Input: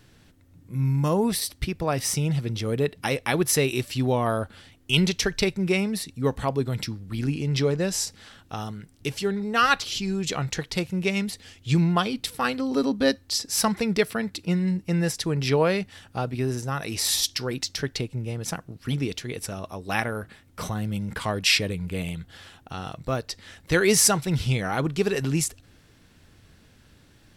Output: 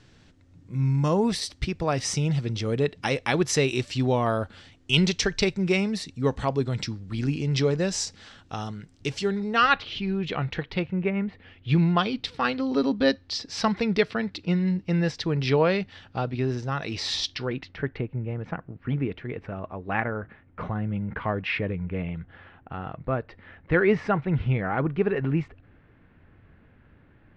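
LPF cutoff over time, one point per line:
LPF 24 dB/oct
9.37 s 7200 Hz
9.8 s 3300 Hz
10.81 s 3300 Hz
11.16 s 1800 Hz
11.95 s 4700 Hz
17.22 s 4700 Hz
17.8 s 2200 Hz

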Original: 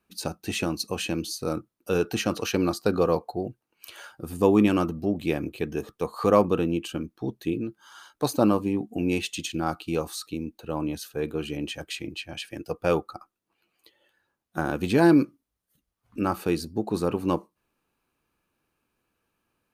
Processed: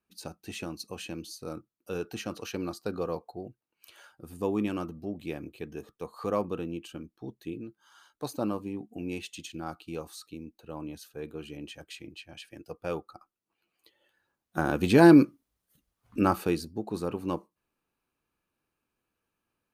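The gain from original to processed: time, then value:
13.03 s -10 dB
15.02 s +2 dB
16.27 s +2 dB
16.74 s -6.5 dB

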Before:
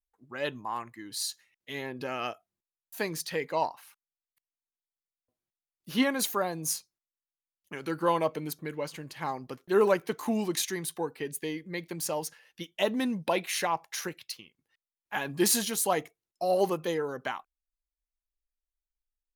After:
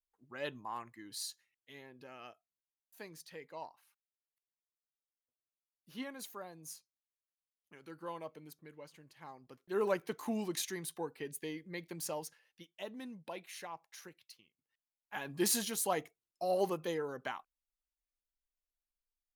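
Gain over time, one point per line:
1.15 s -7.5 dB
1.88 s -17.5 dB
9.4 s -17.5 dB
9.95 s -7.5 dB
12.12 s -7.5 dB
12.76 s -17 dB
14.38 s -17 dB
15.48 s -6.5 dB

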